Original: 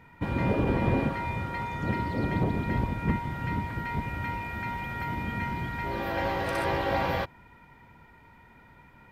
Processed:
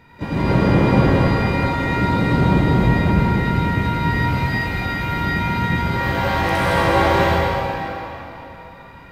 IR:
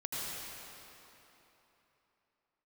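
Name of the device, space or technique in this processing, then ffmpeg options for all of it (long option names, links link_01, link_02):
shimmer-style reverb: -filter_complex "[0:a]asettb=1/sr,asplit=3[link_01][link_02][link_03];[link_01]atrim=end=4.014[link_04];[link_02]atrim=start=4.01:end=4.59,asetpts=PTS-STARTPTS,afade=type=in:duration=0.004:curve=qsin,afade=type=out:start_time=0.576:duration=0.004:curve=qsin,asplit=2[link_05][link_06];[link_06]adelay=44,volume=-2dB[link_07];[link_05][link_07]amix=inputs=2:normalize=0,atrim=end_sample=25578[link_08];[link_03]atrim=start=4.586[link_09];[link_04][link_08]acrossfade=duration=0.004:curve1=hsin:curve2=qsin[link_10];[link_10][link_09]acrossfade=duration=0.004:curve1=qsin:curve2=hsin,asplit=2[link_11][link_12];[link_12]asetrate=88200,aresample=44100,atempo=0.5,volume=-12dB[link_13];[link_11][link_13]amix=inputs=2:normalize=0[link_14];[1:a]atrim=start_sample=2205[link_15];[link_14][link_15]afir=irnorm=-1:irlink=0,volume=7.5dB"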